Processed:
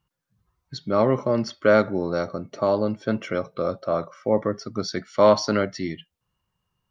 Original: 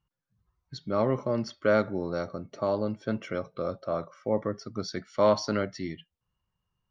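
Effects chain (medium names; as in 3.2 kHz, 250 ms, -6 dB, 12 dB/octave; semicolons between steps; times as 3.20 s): bass shelf 75 Hz -7.5 dB; trim +6.5 dB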